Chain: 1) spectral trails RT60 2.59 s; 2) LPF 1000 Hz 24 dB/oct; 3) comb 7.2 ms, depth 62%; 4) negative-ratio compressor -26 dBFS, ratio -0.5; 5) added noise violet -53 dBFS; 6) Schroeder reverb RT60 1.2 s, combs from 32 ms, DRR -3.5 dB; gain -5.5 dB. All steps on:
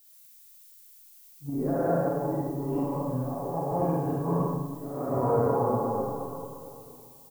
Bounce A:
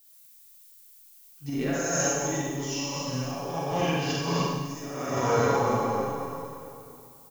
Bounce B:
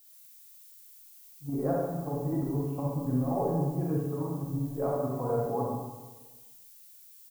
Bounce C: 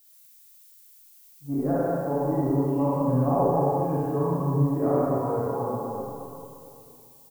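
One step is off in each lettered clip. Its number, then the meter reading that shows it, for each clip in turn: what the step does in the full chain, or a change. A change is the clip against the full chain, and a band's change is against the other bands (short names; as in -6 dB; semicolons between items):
2, 2 kHz band +16.0 dB; 1, 1 kHz band -4.0 dB; 4, momentary loudness spread change -3 LU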